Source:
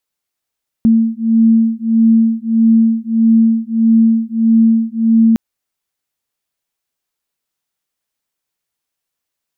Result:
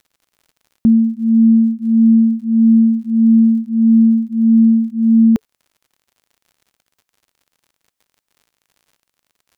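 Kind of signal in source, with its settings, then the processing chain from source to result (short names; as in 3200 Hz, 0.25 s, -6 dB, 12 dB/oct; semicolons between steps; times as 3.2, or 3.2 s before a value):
beating tones 225 Hz, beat 1.6 Hz, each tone -11.5 dBFS 4.51 s
notch 440 Hz; crackle 74/s -42 dBFS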